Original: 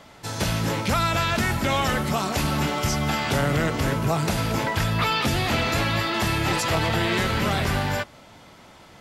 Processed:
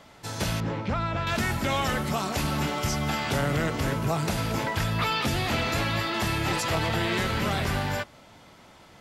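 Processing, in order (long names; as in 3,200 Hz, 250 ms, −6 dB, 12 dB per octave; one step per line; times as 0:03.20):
0:00.60–0:01.27: head-to-tape spacing loss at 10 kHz 27 dB
level −3.5 dB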